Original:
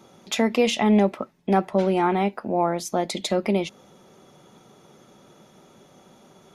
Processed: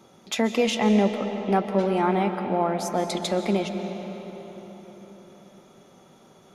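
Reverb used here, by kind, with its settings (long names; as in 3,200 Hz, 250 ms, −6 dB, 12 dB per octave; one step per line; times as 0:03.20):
comb and all-pass reverb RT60 4.6 s, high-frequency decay 0.65×, pre-delay 100 ms, DRR 6.5 dB
level −2 dB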